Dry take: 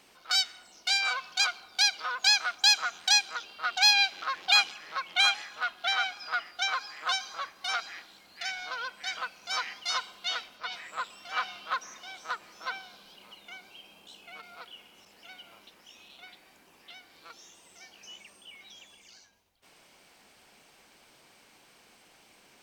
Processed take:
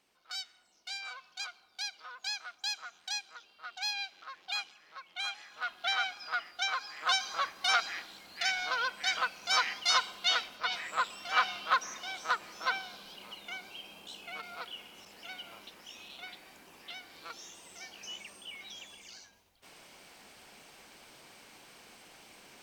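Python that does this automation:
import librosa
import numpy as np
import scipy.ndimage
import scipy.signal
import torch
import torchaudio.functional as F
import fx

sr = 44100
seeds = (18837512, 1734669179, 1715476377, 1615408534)

y = fx.gain(x, sr, db=fx.line((5.22, -14.0), (5.74, -3.0), (6.78, -3.0), (7.4, 4.0)))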